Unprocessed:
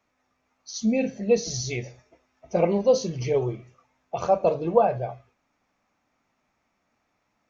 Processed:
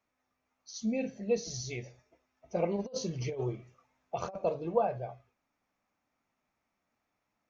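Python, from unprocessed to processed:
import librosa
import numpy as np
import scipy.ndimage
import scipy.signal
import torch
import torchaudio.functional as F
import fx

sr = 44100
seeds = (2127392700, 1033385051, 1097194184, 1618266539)

y = fx.over_compress(x, sr, threshold_db=-25.0, ratio=-0.5, at=(2.76, 4.36))
y = y * 10.0 ** (-9.0 / 20.0)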